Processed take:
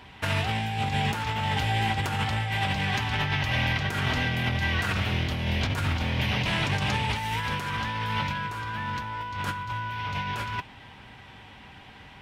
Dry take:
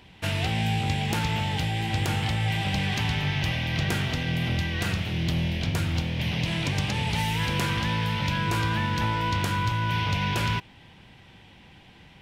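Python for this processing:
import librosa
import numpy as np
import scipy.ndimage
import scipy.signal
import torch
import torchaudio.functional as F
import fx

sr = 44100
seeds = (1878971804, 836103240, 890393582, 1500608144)

y = fx.peak_eq(x, sr, hz=1200.0, db=8.5, octaves=1.5)
y = fx.over_compress(y, sr, threshold_db=-26.0, ratio=-0.5)
y = fx.notch_comb(y, sr, f0_hz=170.0)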